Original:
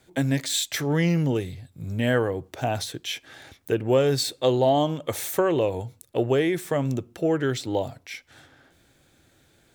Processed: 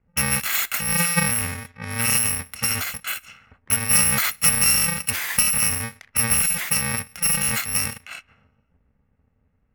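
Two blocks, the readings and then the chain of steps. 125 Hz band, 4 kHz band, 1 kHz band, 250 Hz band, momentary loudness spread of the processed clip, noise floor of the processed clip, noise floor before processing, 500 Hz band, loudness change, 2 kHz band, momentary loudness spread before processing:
-3.5 dB, +5.0 dB, -1.0 dB, -6.5 dB, 12 LU, -67 dBFS, -62 dBFS, -15.5 dB, +5.5 dB, +9.0 dB, 13 LU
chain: bit-reversed sample order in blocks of 128 samples; treble shelf 12 kHz +11.5 dB; transient shaper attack +3 dB, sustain +7 dB; level-controlled noise filter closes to 480 Hz, open at -20.5 dBFS; ten-band graphic EQ 125 Hz -6 dB, 500 Hz -5 dB, 2 kHz +12 dB, 4 kHz -4 dB, 8 kHz -4 dB, 16 kHz -6 dB; trim +3 dB

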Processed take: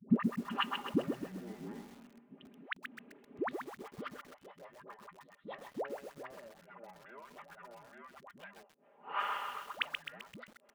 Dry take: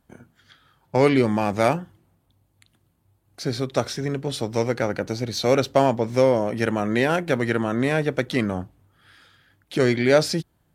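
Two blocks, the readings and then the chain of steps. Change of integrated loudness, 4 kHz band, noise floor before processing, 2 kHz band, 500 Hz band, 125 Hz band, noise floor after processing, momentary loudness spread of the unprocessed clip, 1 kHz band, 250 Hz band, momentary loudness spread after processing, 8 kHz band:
-17.0 dB, -13.0 dB, -67 dBFS, -15.0 dB, -24.0 dB, -21.5 dB, -67 dBFS, 9 LU, -14.0 dB, -15.5 dB, 19 LU, -25.0 dB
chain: de-esser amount 85%; comb 5 ms, depth 67%; compression 2:1, threshold -22 dBFS, peak gain reduction 6.5 dB; transient shaper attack +11 dB, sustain -9 dB; saturation -13 dBFS, distortion -11 dB; inverted gate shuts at -24 dBFS, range -35 dB; mistuned SSB -400 Hz 150–3100 Hz; phase dispersion highs, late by 107 ms, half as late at 520 Hz; high-pass sweep 270 Hz -> 550 Hz, 2.66–4.42 s; bit-crushed delay 130 ms, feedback 55%, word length 11-bit, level -5 dB; trim +12.5 dB

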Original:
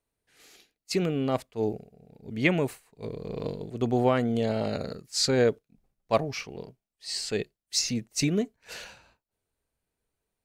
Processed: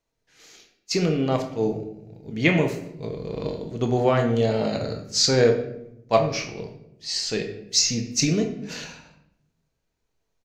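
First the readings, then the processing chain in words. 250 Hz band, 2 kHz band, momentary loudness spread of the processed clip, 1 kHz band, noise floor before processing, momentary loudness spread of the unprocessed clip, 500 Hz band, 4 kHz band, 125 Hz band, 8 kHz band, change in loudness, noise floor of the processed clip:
+3.5 dB, +4.5 dB, 16 LU, +4.5 dB, under -85 dBFS, 17 LU, +5.0 dB, +6.5 dB, +5.5 dB, +7.0 dB, +5.0 dB, -77 dBFS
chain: resonant high shelf 7.6 kHz -6 dB, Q 3; doubling 25 ms -13 dB; simulated room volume 210 m³, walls mixed, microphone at 0.63 m; trim +2.5 dB

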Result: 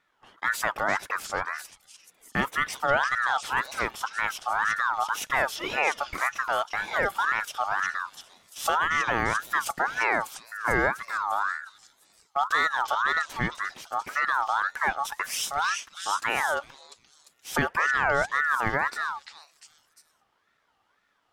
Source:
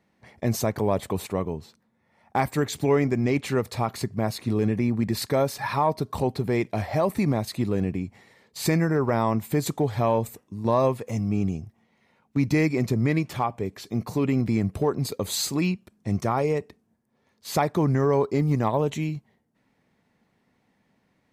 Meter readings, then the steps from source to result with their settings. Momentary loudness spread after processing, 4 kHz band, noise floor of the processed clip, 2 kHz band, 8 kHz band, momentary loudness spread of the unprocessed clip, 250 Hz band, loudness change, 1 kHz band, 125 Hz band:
8 LU, +1.5 dB, -71 dBFS, +12.0 dB, -0.5 dB, 8 LU, -15.5 dB, -1.5 dB, +4.0 dB, -17.0 dB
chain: repeats whose band climbs or falls 348 ms, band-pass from 3.5 kHz, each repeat 0.7 oct, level -1 dB; ring modulator with a swept carrier 1.3 kHz, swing 25%, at 1.9 Hz

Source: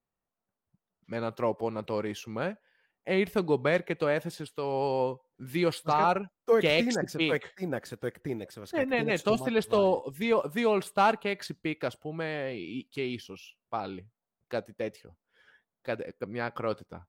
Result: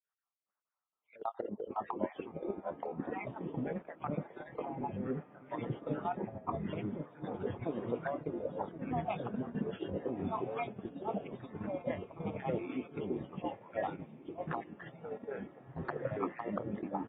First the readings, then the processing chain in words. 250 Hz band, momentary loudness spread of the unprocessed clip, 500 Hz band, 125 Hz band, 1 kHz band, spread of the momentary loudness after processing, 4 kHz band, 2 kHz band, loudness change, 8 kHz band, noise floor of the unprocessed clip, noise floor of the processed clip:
-6.0 dB, 12 LU, -10.5 dB, -4.5 dB, -8.5 dB, 6 LU, -21.5 dB, -15.0 dB, -10.0 dB, under -30 dB, under -85 dBFS, under -85 dBFS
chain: random holes in the spectrogram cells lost 54%; auto-wah 200–1400 Hz, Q 3.7, down, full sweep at -26.5 dBFS; peak limiter -33.5 dBFS, peak gain reduction 11 dB; tone controls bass -3 dB, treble +10 dB; doubling 20 ms -12 dB; careless resampling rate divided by 4×, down filtered, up hold; compressor with a negative ratio -48 dBFS, ratio -0.5; treble shelf 2.6 kHz -7 dB; echo that smears into a reverb 1321 ms, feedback 44%, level -12 dB; ever faster or slower copies 432 ms, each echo -4 st, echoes 2; gate -52 dBFS, range -8 dB; trim +11 dB; AAC 16 kbps 32 kHz

